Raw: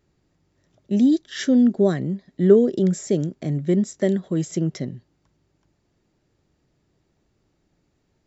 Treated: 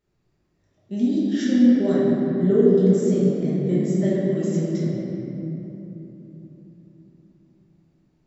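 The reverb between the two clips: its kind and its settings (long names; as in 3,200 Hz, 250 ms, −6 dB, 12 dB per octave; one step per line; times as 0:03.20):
rectangular room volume 210 cubic metres, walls hard, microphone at 1.3 metres
level −10.5 dB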